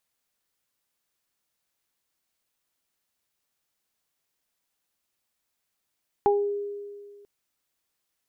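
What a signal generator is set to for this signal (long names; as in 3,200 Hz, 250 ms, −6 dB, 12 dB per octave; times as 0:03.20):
harmonic partials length 0.99 s, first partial 407 Hz, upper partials 1.5 dB, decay 1.94 s, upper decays 0.28 s, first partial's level −18 dB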